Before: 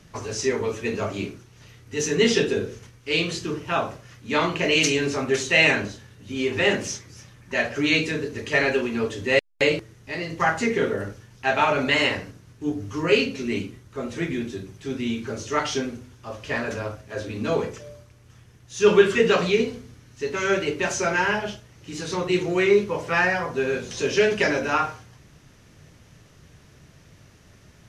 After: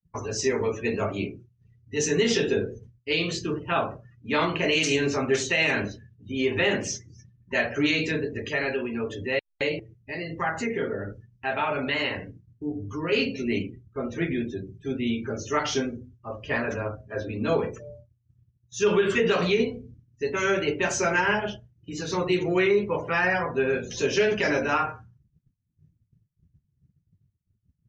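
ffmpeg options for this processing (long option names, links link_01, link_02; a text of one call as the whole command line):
ffmpeg -i in.wav -filter_complex "[0:a]asettb=1/sr,asplit=3[link_01][link_02][link_03];[link_01]atrim=end=8.484[link_04];[link_02]atrim=start=8.48:end=13.13,asetpts=PTS-STARTPTS,afade=type=in:duration=0.004:curve=qsin,afade=type=out:start_time=4.646:duration=0.004:curve=qsin,acompressor=threshold=-33dB:ratio=1.5:attack=3.2:release=140:knee=1:detection=peak[link_05];[link_03]atrim=start=13.126[link_06];[link_04][link_05]acrossfade=duration=0.004:curve1=hsin:curve2=qsin[link_07];[link_07][link_06]acrossfade=duration=0.004:curve1=qsin:curve2=hsin,afftdn=noise_reduction=30:noise_floor=-41,agate=range=-33dB:threshold=-44dB:ratio=3:detection=peak,alimiter=limit=-13dB:level=0:latency=1:release=81" out.wav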